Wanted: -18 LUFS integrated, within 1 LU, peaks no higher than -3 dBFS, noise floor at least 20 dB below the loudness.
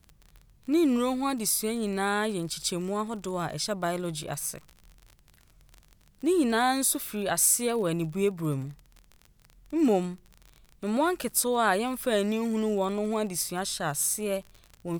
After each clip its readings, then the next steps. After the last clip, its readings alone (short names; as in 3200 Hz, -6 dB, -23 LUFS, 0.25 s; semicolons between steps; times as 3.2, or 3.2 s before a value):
ticks 32/s; loudness -27.5 LUFS; peak -9.0 dBFS; loudness target -18.0 LUFS
-> de-click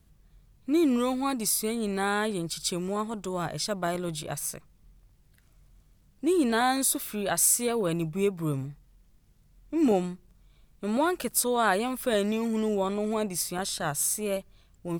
ticks 0.27/s; loudness -27.5 LUFS; peak -9.0 dBFS; loudness target -18.0 LUFS
-> gain +9.5 dB; limiter -3 dBFS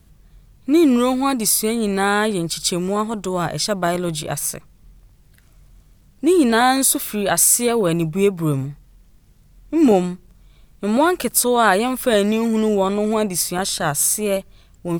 loudness -18.0 LUFS; peak -3.0 dBFS; noise floor -52 dBFS